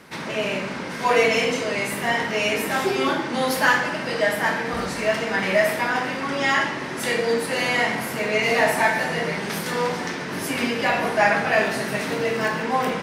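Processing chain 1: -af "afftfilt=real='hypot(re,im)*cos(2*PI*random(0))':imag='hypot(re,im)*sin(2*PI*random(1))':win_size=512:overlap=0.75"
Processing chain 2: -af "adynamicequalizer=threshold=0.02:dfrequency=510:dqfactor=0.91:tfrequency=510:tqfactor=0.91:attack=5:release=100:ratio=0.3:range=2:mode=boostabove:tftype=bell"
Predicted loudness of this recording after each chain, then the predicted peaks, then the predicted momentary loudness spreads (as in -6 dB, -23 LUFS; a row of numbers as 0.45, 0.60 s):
-28.0, -20.5 LUFS; -10.5, -3.0 dBFS; 7, 7 LU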